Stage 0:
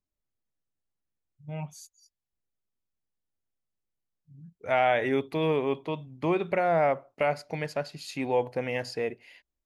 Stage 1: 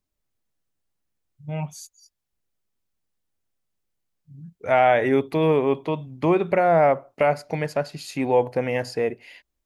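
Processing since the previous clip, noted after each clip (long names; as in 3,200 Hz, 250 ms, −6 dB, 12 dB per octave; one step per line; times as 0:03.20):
dynamic equaliser 3,600 Hz, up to −6 dB, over −46 dBFS, Q 0.76
level +7 dB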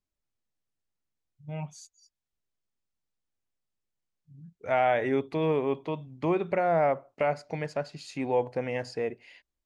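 low-pass filter 8,500 Hz 24 dB per octave
level −7 dB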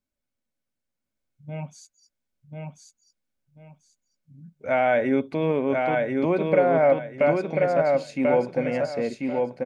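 hollow resonant body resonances 240/550/1,500/2,200 Hz, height 10 dB, ringing for 40 ms
on a send: repeating echo 1,040 ms, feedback 25%, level −3 dB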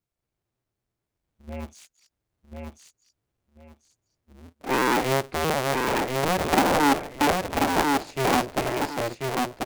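sub-harmonics by changed cycles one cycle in 2, inverted
level −1.5 dB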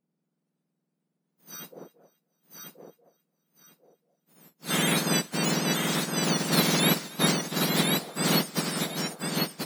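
frequency axis turned over on the octave scale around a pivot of 1,800 Hz
feedback echo with a high-pass in the loop 266 ms, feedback 40%, high-pass 750 Hz, level −22 dB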